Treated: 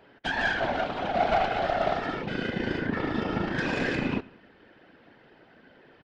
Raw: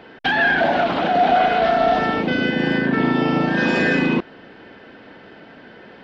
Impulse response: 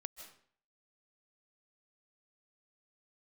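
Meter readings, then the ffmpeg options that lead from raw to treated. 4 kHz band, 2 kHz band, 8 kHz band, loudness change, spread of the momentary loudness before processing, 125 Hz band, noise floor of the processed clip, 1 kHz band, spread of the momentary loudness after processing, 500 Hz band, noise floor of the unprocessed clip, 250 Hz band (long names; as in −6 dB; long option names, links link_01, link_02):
−9.0 dB, −10.5 dB, can't be measured, −10.0 dB, 4 LU, −8.0 dB, −57 dBFS, −10.0 dB, 6 LU, −9.5 dB, −44 dBFS, −11.0 dB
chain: -filter_complex "[0:a]aeval=exprs='0.473*(cos(1*acos(clip(val(0)/0.473,-1,1)))-cos(1*PI/2))+0.075*(cos(2*acos(clip(val(0)/0.473,-1,1)))-cos(2*PI/2))+0.106*(cos(3*acos(clip(val(0)/0.473,-1,1)))-cos(3*PI/2))+0.0211*(cos(5*acos(clip(val(0)/0.473,-1,1)))-cos(5*PI/2))+0.0075*(cos(7*acos(clip(val(0)/0.473,-1,1)))-cos(7*PI/2))':channel_layout=same,afftfilt=real='hypot(re,im)*cos(2*PI*random(0))':imag='hypot(re,im)*sin(2*PI*random(1))':win_size=512:overlap=0.75,asplit=2[link_01][link_02];[link_02]adelay=93,lowpass=frequency=4900:poles=1,volume=-22dB,asplit=2[link_03][link_04];[link_04]adelay=93,lowpass=frequency=4900:poles=1,volume=0.49,asplit=2[link_05][link_06];[link_06]adelay=93,lowpass=frequency=4900:poles=1,volume=0.49[link_07];[link_01][link_03][link_05][link_07]amix=inputs=4:normalize=0"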